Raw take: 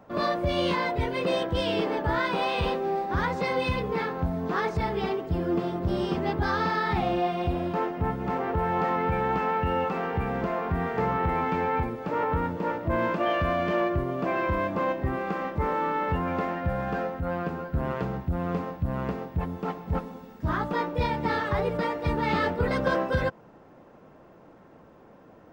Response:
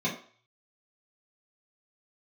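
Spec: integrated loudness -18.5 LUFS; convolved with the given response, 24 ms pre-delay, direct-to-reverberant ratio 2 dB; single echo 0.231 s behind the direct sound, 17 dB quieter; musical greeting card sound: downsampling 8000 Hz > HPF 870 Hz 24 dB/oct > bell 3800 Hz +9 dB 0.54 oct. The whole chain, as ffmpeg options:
-filter_complex "[0:a]aecho=1:1:231:0.141,asplit=2[a][b];[1:a]atrim=start_sample=2205,adelay=24[c];[b][c]afir=irnorm=-1:irlink=0,volume=-11dB[d];[a][d]amix=inputs=2:normalize=0,aresample=8000,aresample=44100,highpass=f=870:w=0.5412,highpass=f=870:w=1.3066,equalizer=f=3.8k:t=o:w=0.54:g=9,volume=12dB"

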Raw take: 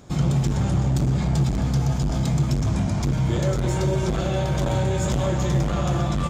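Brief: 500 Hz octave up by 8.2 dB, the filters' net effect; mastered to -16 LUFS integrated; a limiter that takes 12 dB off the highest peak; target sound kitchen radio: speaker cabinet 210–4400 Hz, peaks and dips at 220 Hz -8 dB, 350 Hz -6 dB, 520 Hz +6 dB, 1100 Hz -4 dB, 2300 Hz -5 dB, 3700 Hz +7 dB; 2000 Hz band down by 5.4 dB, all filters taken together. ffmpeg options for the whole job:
-af "equalizer=f=500:t=o:g=8,equalizer=f=2k:t=o:g=-6,alimiter=limit=-20.5dB:level=0:latency=1,highpass=210,equalizer=f=220:t=q:w=4:g=-8,equalizer=f=350:t=q:w=4:g=-6,equalizer=f=520:t=q:w=4:g=6,equalizer=f=1.1k:t=q:w=4:g=-4,equalizer=f=2.3k:t=q:w=4:g=-5,equalizer=f=3.7k:t=q:w=4:g=7,lowpass=f=4.4k:w=0.5412,lowpass=f=4.4k:w=1.3066,volume=15.5dB"

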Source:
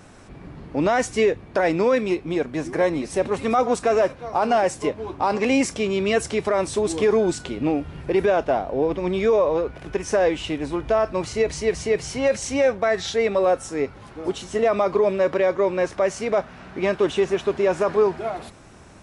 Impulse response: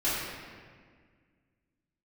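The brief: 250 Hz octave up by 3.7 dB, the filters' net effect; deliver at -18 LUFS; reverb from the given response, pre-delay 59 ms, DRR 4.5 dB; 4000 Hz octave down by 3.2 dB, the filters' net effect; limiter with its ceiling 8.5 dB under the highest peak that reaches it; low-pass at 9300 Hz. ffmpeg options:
-filter_complex "[0:a]lowpass=9.3k,equalizer=f=250:t=o:g=5,equalizer=f=4k:t=o:g=-4.5,alimiter=limit=-15.5dB:level=0:latency=1,asplit=2[a][b];[1:a]atrim=start_sample=2205,adelay=59[c];[b][c]afir=irnorm=-1:irlink=0,volume=-15.5dB[d];[a][d]amix=inputs=2:normalize=0,volume=5.5dB"

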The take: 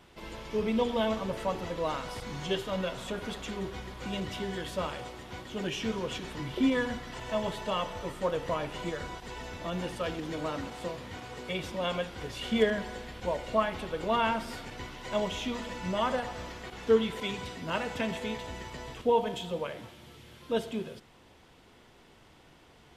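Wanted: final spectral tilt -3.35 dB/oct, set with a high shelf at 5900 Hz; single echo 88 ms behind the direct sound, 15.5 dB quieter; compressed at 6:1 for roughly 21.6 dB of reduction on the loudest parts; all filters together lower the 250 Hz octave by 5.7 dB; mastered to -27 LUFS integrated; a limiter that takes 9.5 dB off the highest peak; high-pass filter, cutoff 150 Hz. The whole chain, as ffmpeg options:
-af "highpass=150,equalizer=f=250:t=o:g=-6,highshelf=f=5.9k:g=3.5,acompressor=threshold=-45dB:ratio=6,alimiter=level_in=16.5dB:limit=-24dB:level=0:latency=1,volume=-16.5dB,aecho=1:1:88:0.168,volume=23dB"

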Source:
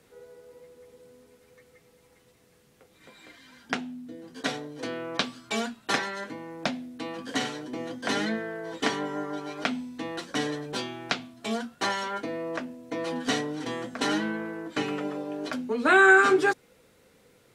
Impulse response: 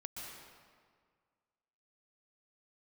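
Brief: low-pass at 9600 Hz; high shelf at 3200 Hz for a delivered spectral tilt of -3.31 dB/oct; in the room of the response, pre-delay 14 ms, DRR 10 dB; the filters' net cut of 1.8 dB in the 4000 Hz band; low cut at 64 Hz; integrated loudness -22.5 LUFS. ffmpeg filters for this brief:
-filter_complex "[0:a]highpass=64,lowpass=9.6k,highshelf=f=3.2k:g=6.5,equalizer=f=4k:t=o:g=-7,asplit=2[a][b];[1:a]atrim=start_sample=2205,adelay=14[c];[b][c]afir=irnorm=-1:irlink=0,volume=-8.5dB[d];[a][d]amix=inputs=2:normalize=0,volume=5.5dB"

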